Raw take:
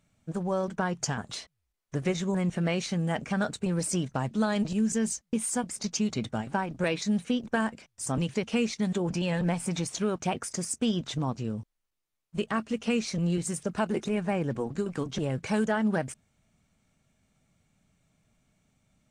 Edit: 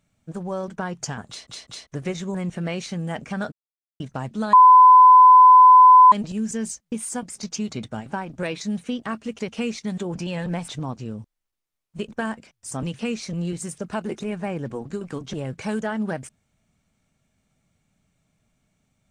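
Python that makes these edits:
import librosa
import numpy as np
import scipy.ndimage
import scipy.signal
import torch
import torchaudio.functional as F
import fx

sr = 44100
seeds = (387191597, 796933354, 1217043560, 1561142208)

y = fx.edit(x, sr, fx.stutter_over(start_s=1.28, slice_s=0.2, count=3),
    fx.silence(start_s=3.52, length_s=0.48),
    fx.insert_tone(at_s=4.53, length_s=1.59, hz=1010.0, db=-6.5),
    fx.swap(start_s=7.43, length_s=0.91, other_s=12.47, other_length_s=0.37),
    fx.cut(start_s=9.63, length_s=1.44), tone=tone)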